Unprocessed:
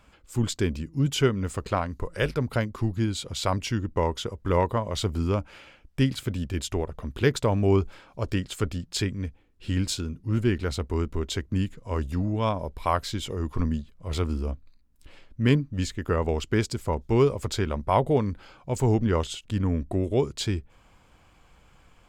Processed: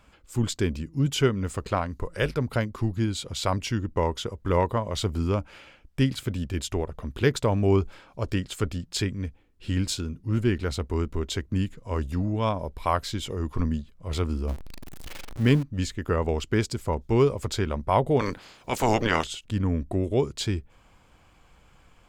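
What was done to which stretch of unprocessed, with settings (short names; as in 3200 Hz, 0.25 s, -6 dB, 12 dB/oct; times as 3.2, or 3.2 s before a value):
14.48–15.63 zero-crossing step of -33 dBFS
18.19–19.23 spectral limiter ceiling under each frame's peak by 25 dB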